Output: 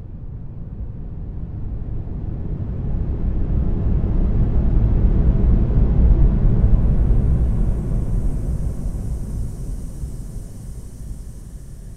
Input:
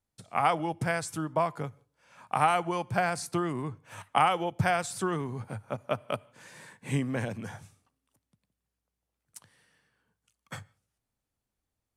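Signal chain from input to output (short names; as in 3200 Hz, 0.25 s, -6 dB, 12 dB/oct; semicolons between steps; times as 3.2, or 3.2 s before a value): wind noise 99 Hz -27 dBFS; Paulstretch 16×, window 0.50 s, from 8.75; diffused feedback echo 1.503 s, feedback 53%, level -11 dB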